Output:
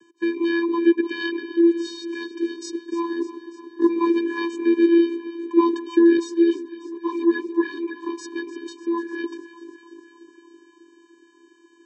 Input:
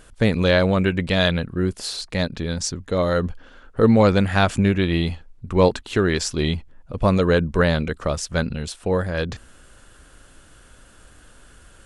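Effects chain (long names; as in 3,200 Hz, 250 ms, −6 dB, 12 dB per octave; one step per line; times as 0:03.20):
delay that swaps between a low-pass and a high-pass 149 ms, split 830 Hz, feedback 82%, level −13 dB
channel vocoder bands 16, square 338 Hz
0:06.17–0:08.05: string-ensemble chorus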